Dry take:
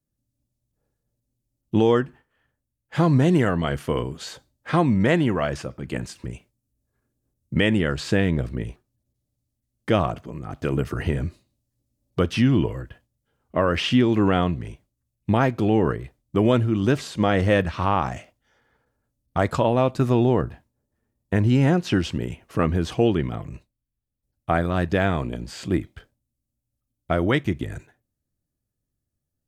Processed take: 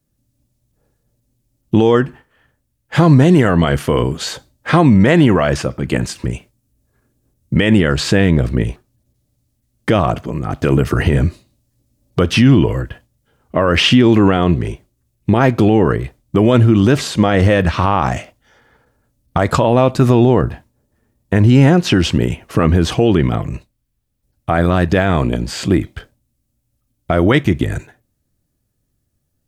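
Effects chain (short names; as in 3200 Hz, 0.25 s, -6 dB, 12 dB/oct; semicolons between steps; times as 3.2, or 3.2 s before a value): 14.36–15.41 bell 380 Hz +7 dB 0.36 oct; maximiser +13.5 dB; gain -1 dB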